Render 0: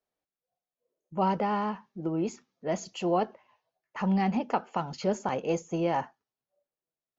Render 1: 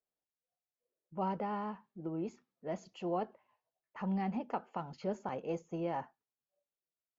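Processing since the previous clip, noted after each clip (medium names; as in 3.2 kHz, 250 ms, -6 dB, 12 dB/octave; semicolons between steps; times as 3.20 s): low-pass 2.2 kHz 6 dB/octave; trim -8.5 dB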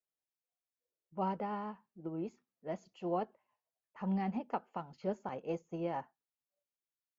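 upward expansion 1.5:1, over -47 dBFS; trim +1 dB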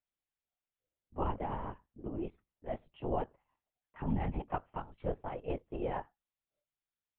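LPC vocoder at 8 kHz whisper; trim +1 dB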